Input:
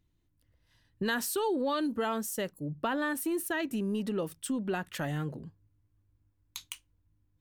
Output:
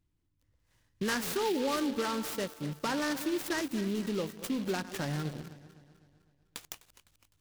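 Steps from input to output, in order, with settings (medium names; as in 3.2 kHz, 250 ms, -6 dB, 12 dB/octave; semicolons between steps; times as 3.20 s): backward echo that repeats 127 ms, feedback 69%, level -13 dB; band-stop 680 Hz, Q 12; in parallel at -9 dB: word length cut 6-bit, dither none; on the sum: buffer glitch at 1.25 s, samples 512, times 6; delay time shaken by noise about 3.1 kHz, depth 0.063 ms; trim -3.5 dB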